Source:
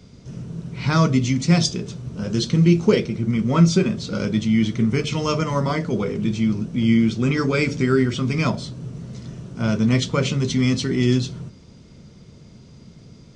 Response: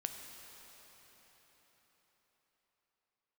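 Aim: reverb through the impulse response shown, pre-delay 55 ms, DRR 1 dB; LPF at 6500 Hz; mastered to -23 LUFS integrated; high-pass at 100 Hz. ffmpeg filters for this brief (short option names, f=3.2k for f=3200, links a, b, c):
-filter_complex "[0:a]highpass=100,lowpass=6.5k,asplit=2[a][b];[1:a]atrim=start_sample=2205,adelay=55[c];[b][c]afir=irnorm=-1:irlink=0,volume=-0.5dB[d];[a][d]amix=inputs=2:normalize=0,volume=-4.5dB"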